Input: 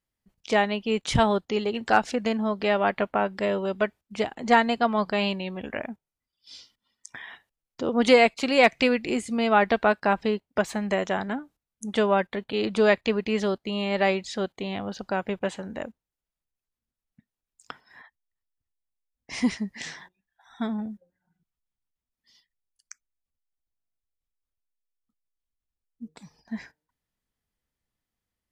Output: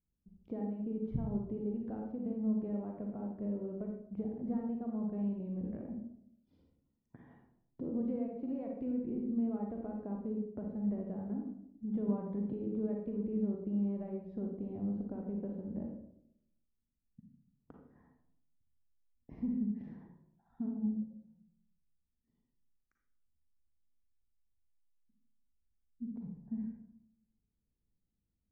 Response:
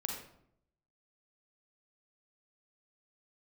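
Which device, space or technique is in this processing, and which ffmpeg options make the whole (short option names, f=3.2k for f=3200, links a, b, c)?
television next door: -filter_complex "[0:a]acompressor=threshold=-38dB:ratio=3,lowpass=280[a];[1:a]atrim=start_sample=2205[b];[a][b]afir=irnorm=-1:irlink=0,asettb=1/sr,asplit=3[c][d][e];[c]atrim=end=12.084[f];[d]atrim=start=12.08:end=12.54,asetpts=PTS-STARTPTS,afade=t=in:d=0.004:c=qsin,afade=t=out:st=0.456:d=0.004:c=qsin,equalizer=f=160:t=o:w=0.67:g=10,equalizer=f=1k:t=o:w=0.67:g=7,equalizer=f=4k:t=o:w=0.67:g=9[g];[e]atrim=start=12.536[h];[f][g]acrossfade=d=0.004:c1=hsin:c2=qsin[i];[i][h]acrossfade=d=0.004:c1=qsin:c2=hsin,volume=3dB"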